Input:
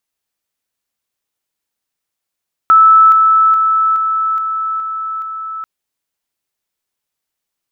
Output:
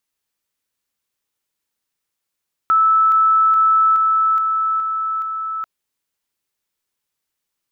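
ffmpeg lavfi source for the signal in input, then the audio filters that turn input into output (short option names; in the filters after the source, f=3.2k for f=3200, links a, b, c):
-f lavfi -i "aevalsrc='pow(10,(-3.5-3*floor(t/0.42))/20)*sin(2*PI*1310*t)':d=2.94:s=44100"
-af "equalizer=f=690:t=o:w=0.26:g=-6,alimiter=limit=-10.5dB:level=0:latency=1"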